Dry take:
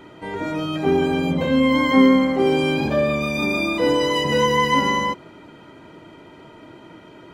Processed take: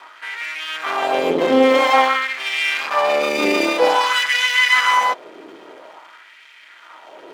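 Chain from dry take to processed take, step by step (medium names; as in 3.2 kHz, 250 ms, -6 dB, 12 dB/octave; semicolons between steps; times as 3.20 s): half-wave rectifier; LFO high-pass sine 0.5 Hz 360–2200 Hz; trim +6.5 dB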